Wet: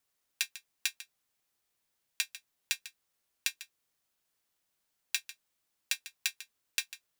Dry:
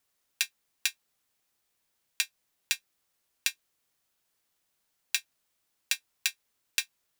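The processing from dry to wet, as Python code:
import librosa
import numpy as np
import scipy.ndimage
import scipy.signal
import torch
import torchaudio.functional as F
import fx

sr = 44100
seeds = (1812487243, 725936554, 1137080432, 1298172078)

y = x + 10.0 ** (-15.0 / 20.0) * np.pad(x, (int(147 * sr / 1000.0), 0))[:len(x)]
y = y * 10.0 ** (-3.5 / 20.0)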